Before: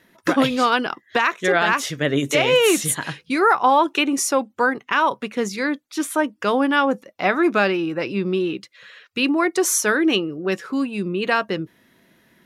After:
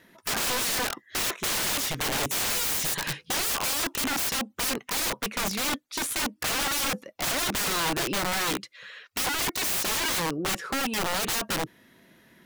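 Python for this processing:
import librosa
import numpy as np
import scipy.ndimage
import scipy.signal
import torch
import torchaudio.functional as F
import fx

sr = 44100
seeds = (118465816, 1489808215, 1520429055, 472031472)

y = (np.mod(10.0 ** (22.5 / 20.0) * x + 1.0, 2.0) - 1.0) / 10.0 ** (22.5 / 20.0)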